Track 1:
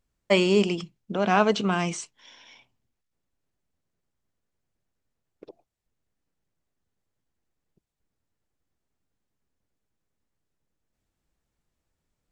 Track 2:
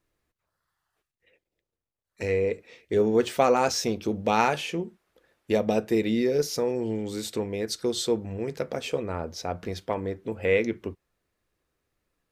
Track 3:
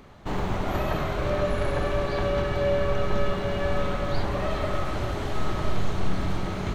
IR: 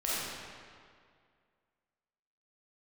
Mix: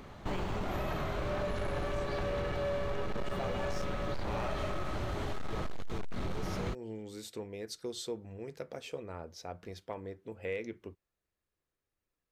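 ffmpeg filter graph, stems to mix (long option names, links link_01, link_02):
-filter_complex "[0:a]volume=-17dB[link_01];[1:a]equalizer=frequency=230:width_type=o:width=0.77:gain=-2.5,volume=-11.5dB[link_02];[2:a]volume=0dB[link_03];[link_01][link_02][link_03]amix=inputs=3:normalize=0,asoftclip=type=hard:threshold=-22dB,acompressor=threshold=-32dB:ratio=6"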